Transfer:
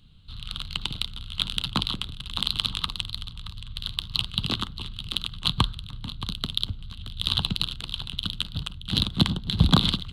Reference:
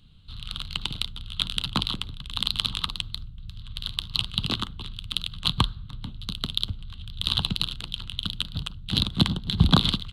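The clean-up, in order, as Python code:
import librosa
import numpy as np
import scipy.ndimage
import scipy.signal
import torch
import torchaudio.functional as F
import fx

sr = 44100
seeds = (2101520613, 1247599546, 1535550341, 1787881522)

y = fx.fix_declip(x, sr, threshold_db=-6.5)
y = fx.fix_echo_inverse(y, sr, delay_ms=624, level_db=-14.0)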